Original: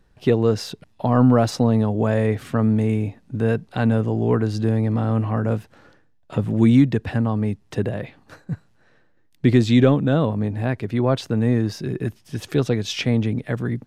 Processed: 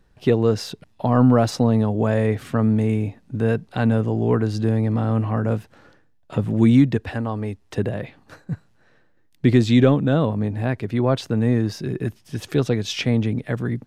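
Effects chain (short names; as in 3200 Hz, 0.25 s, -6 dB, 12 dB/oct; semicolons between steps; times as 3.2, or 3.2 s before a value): 6.97–7.78 bell 160 Hz -14 dB 0.77 oct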